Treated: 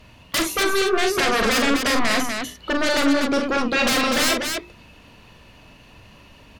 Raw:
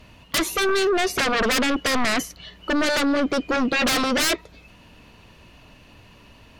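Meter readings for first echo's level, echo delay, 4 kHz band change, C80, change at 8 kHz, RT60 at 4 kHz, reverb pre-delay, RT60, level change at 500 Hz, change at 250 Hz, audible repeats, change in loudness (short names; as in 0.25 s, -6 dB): -6.0 dB, 43 ms, +2.0 dB, none, +2.0 dB, none, none, none, +1.0 dB, +1.0 dB, 2, +1.0 dB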